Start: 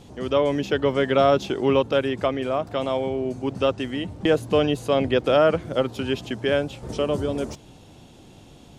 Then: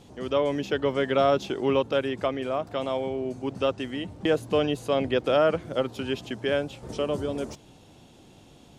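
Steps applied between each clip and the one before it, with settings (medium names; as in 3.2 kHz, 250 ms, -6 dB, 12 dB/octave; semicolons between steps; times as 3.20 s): bass shelf 120 Hz -4.5 dB; trim -3.5 dB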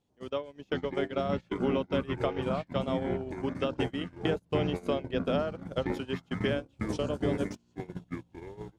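compression 12:1, threshold -31 dBFS, peak gain reduction 14.5 dB; ever faster or slower copies 438 ms, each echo -7 st, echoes 3; gate -32 dBFS, range -31 dB; trim +4.5 dB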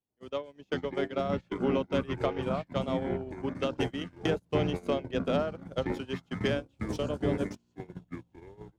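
tracing distortion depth 0.039 ms; three bands expanded up and down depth 40%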